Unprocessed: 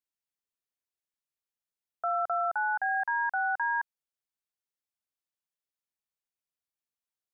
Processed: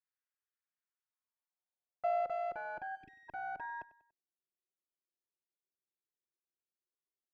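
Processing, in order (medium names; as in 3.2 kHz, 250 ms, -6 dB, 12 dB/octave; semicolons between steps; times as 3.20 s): comb filter that takes the minimum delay 5.5 ms; band-pass sweep 1.6 kHz -> 360 Hz, 0.80–2.62 s; spectral selection erased 2.95–3.29 s, 430–1800 Hz; on a send: feedback delay 96 ms, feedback 42%, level -18 dB; on the sum: trim +4 dB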